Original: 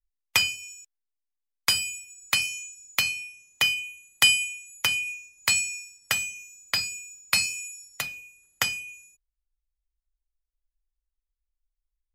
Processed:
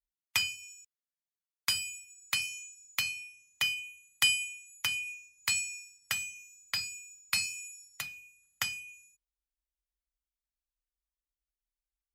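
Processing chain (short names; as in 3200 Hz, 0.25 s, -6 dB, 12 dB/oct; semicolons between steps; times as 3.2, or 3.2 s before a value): HPF 42 Hz; bell 440 Hz -10.5 dB 1.4 oct; gain -7 dB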